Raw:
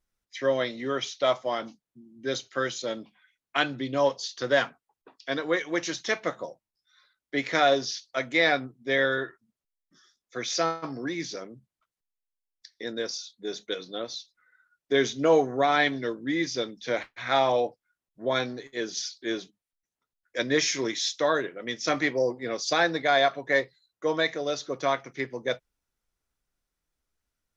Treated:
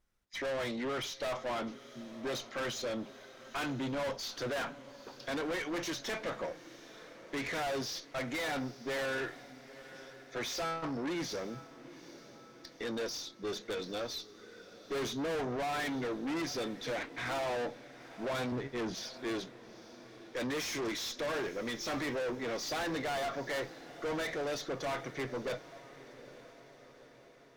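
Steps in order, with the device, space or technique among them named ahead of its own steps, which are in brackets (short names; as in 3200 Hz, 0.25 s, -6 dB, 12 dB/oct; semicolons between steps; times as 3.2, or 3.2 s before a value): 18.52–19.14 tone controls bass +13 dB, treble -11 dB; tube preamp driven hard (tube stage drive 38 dB, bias 0.25; high shelf 3900 Hz -7 dB); diffused feedback echo 0.881 s, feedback 56%, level -16 dB; gain +5 dB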